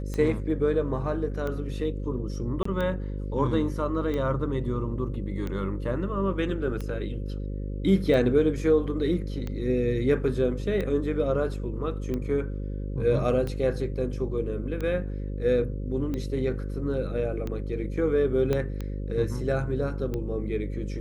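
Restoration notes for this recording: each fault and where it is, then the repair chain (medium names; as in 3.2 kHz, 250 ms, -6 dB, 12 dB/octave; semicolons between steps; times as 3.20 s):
buzz 50 Hz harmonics 11 -32 dBFS
tick 45 rpm -20 dBFS
2.63–2.65 s: dropout 24 ms
18.53 s: pop -14 dBFS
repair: de-click; de-hum 50 Hz, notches 11; interpolate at 2.63 s, 24 ms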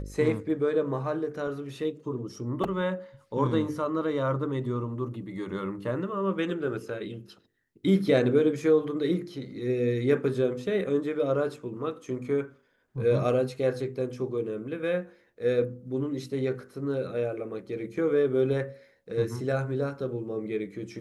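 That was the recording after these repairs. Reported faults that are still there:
18.53 s: pop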